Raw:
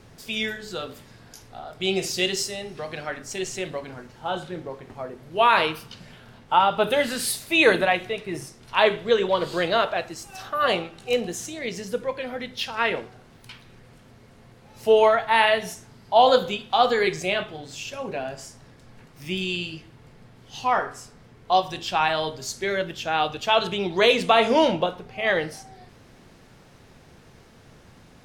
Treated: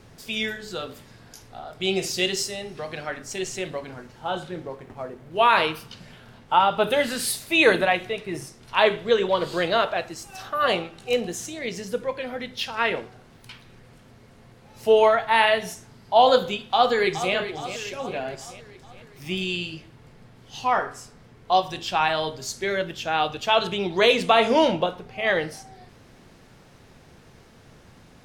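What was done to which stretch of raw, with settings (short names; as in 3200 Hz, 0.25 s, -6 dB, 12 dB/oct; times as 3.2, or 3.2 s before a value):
4.74–5.37 median filter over 9 samples
16.56–17.34 echo throw 0.42 s, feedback 55%, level -11 dB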